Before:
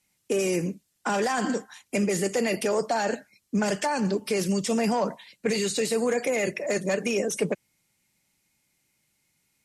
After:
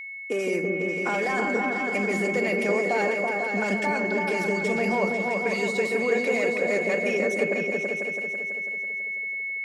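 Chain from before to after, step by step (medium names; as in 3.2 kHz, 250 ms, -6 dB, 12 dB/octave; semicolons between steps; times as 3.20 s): high-pass 160 Hz; tone controls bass -5 dB, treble -10 dB; in parallel at -8 dB: crossover distortion -39.5 dBFS; on the sum: whistle 2.2 kHz -31 dBFS; delay with an opening low-pass 165 ms, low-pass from 400 Hz, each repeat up 2 oct, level 0 dB; trim -4 dB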